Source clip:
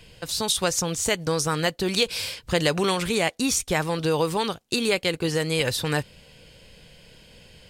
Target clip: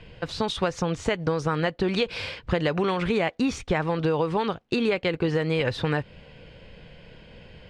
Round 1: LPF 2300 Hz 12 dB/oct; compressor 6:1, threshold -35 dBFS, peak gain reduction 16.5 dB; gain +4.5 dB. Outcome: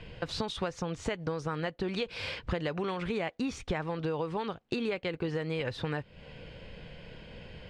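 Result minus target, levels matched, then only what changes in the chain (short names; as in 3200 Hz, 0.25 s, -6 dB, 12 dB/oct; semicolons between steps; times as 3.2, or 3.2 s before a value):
compressor: peak gain reduction +8.5 dB
change: compressor 6:1, threshold -24.5 dBFS, peak gain reduction 8 dB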